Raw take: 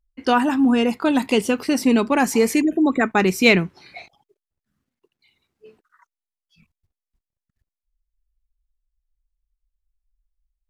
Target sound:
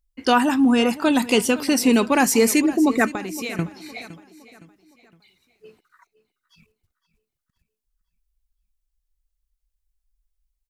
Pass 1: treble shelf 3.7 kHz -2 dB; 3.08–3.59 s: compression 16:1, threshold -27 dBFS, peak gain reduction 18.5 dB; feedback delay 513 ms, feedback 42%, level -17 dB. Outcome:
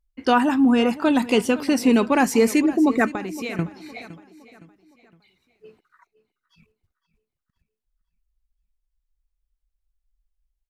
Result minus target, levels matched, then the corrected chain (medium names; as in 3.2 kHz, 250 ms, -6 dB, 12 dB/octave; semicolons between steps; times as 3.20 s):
8 kHz band -7.5 dB
treble shelf 3.7 kHz +8 dB; 3.08–3.59 s: compression 16:1, threshold -27 dBFS, peak gain reduction 20.5 dB; feedback delay 513 ms, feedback 42%, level -17 dB